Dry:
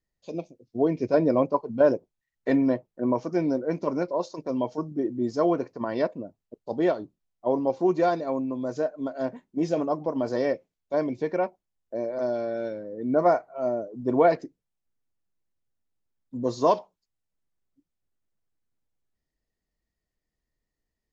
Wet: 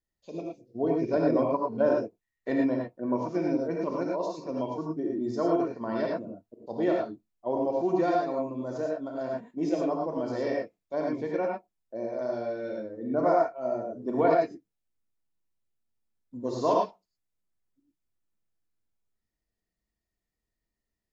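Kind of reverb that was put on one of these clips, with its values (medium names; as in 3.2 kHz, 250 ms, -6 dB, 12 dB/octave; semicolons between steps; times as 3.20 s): gated-style reverb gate 130 ms rising, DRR -1.5 dB; trim -6 dB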